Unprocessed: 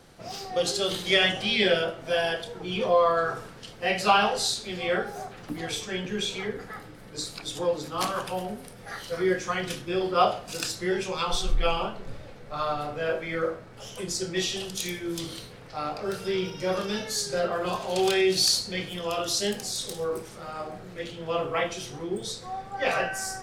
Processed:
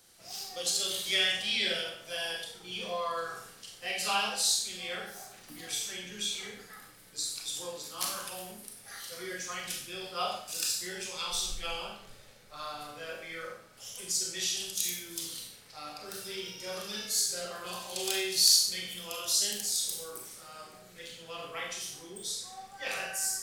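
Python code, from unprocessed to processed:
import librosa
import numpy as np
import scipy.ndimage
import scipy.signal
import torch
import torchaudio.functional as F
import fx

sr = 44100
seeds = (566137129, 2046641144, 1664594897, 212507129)

y = scipy.signal.lfilter([1.0, -0.9], [1.0], x)
y = fx.rev_schroeder(y, sr, rt60_s=0.55, comb_ms=30, drr_db=1.5)
y = F.gain(torch.from_numpy(y), 1.5).numpy()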